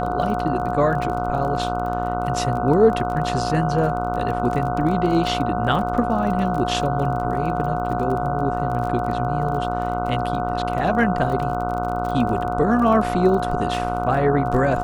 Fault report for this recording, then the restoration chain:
buzz 60 Hz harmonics 25 -27 dBFS
crackle 27 per s -28 dBFS
whine 720 Hz -25 dBFS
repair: de-click; de-hum 60 Hz, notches 25; band-stop 720 Hz, Q 30

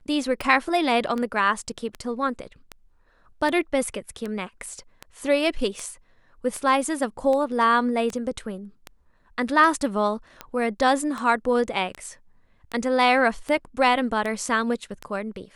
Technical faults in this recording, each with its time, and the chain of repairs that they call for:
tick 78 rpm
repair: de-click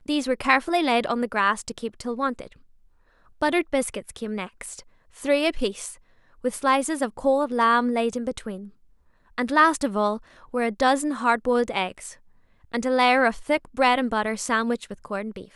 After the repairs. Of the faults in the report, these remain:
nothing left

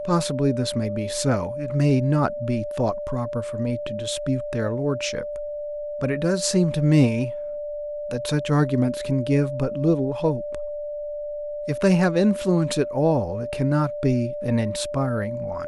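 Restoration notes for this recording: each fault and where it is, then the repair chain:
whine 590 Hz -28 dBFS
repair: band-stop 590 Hz, Q 30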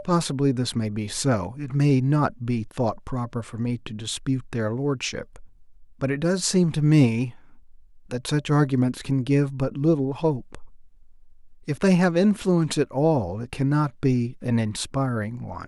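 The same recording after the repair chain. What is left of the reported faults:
nothing left

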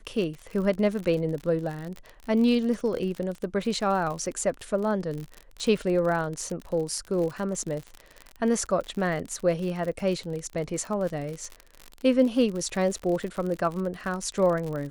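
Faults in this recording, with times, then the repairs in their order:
crackle 52 per s -31 dBFS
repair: de-click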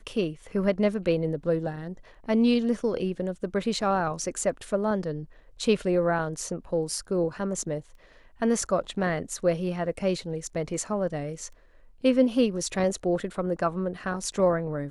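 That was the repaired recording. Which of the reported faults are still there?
nothing left

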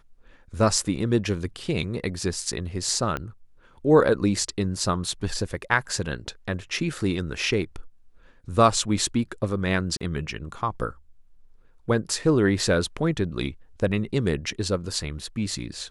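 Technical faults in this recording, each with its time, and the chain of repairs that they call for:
3.17 s: pop -15 dBFS
9.97–10.01 s: dropout 36 ms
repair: de-click; interpolate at 9.97 s, 36 ms

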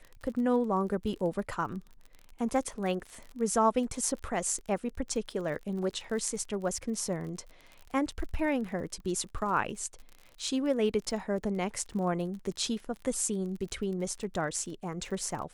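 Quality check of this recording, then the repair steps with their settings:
crackle 39 per s -39 dBFS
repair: de-click

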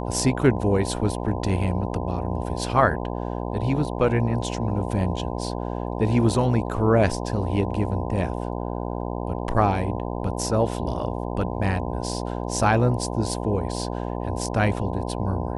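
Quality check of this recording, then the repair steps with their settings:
buzz 60 Hz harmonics 17 -29 dBFS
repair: de-hum 60 Hz, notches 17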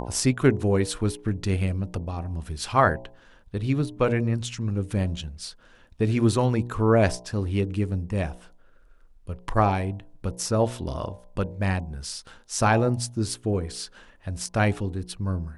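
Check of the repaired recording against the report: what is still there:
nothing left

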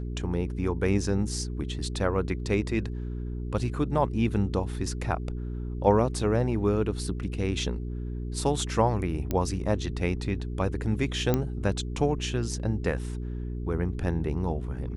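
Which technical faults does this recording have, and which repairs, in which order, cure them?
hum 60 Hz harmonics 7 -33 dBFS
9.31 s: pop -14 dBFS
11.34 s: pop -11 dBFS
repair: de-click; de-hum 60 Hz, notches 7

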